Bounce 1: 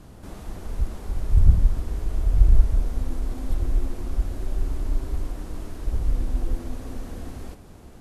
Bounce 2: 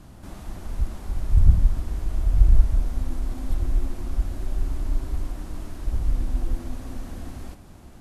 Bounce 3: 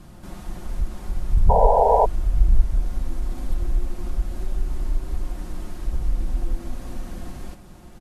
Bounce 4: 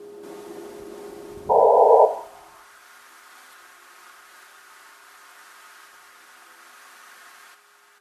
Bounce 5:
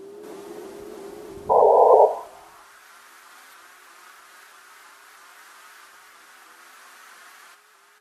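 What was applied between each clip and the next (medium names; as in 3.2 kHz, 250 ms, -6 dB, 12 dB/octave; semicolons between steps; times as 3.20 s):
peaking EQ 450 Hz -7.5 dB 0.39 oct
comb 5.6 ms, depth 43%; in parallel at -3 dB: compression, threshold -23 dBFS, peak gain reduction 16 dB; on the sum: painted sound noise, 1.49–2.06 s, 410–1000 Hz -13 dBFS; trim -3.5 dB
gated-style reverb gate 230 ms falling, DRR 10 dB; whistle 410 Hz -45 dBFS; high-pass sweep 360 Hz -> 1.4 kHz, 1.84–2.75 s; trim -1.5 dB
vibrato with a chosen wave saw up 3.1 Hz, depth 100 cents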